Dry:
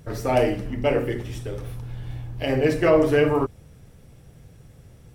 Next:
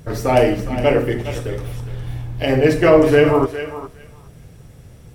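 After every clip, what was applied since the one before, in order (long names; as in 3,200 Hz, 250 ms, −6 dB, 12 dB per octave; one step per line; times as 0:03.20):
feedback echo with a high-pass in the loop 412 ms, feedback 15%, high-pass 620 Hz, level −10 dB
on a send at −21 dB: convolution reverb RT60 0.80 s, pre-delay 4 ms
on the sum: level +6 dB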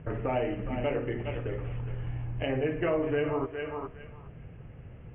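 Butterworth low-pass 3,000 Hz 96 dB per octave
downward compressor 2.5 to 1, threshold −27 dBFS, peak gain reduction 13.5 dB
level −4.5 dB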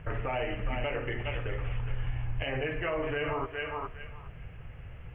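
parametric band 260 Hz −15 dB 2.9 octaves
brickwall limiter −31 dBFS, peak gain reduction 8 dB
level +8.5 dB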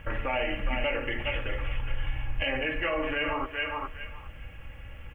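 high-shelf EQ 2,600 Hz +11.5 dB
comb filter 3.6 ms, depth 63%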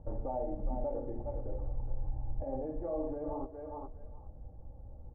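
elliptic low-pass filter 810 Hz, stop band 80 dB
level −4 dB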